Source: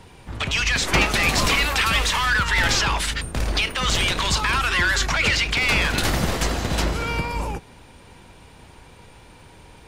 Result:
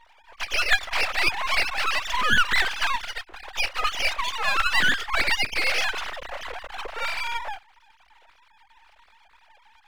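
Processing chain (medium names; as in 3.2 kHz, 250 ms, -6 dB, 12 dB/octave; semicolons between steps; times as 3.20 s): formants replaced by sine waves; half-wave rectifier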